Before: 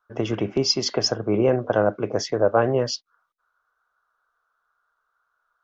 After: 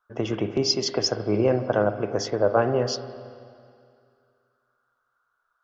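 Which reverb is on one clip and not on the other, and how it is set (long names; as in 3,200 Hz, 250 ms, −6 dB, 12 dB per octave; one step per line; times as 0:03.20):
spring reverb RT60 2.3 s, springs 47/57 ms, chirp 40 ms, DRR 10 dB
level −2 dB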